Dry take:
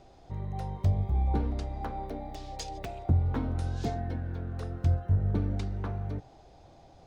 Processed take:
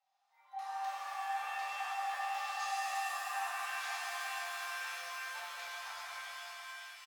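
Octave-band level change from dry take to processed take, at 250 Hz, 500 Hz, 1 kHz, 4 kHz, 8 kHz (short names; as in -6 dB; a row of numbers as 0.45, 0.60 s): under -40 dB, -13.0 dB, +4.0 dB, +6.5 dB, n/a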